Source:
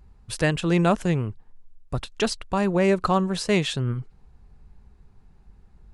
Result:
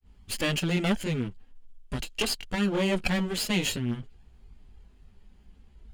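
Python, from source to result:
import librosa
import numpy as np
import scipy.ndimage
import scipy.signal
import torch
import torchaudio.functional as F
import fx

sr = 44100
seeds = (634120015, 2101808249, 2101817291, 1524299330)

p1 = fx.lower_of_two(x, sr, delay_ms=0.42)
p2 = fx.high_shelf(p1, sr, hz=5600.0, db=6.0)
p3 = fx.over_compress(p2, sr, threshold_db=-26.0, ratio=-1.0)
p4 = p2 + (p3 * librosa.db_to_amplitude(-2.5))
p5 = fx.granulator(p4, sr, seeds[0], grain_ms=178.0, per_s=20.0, spray_ms=15.0, spread_st=0)
p6 = fx.graphic_eq_31(p5, sr, hz=(125, 250, 3150), db=(-9, 4, 11))
y = p6 * librosa.db_to_amplitude(-4.0)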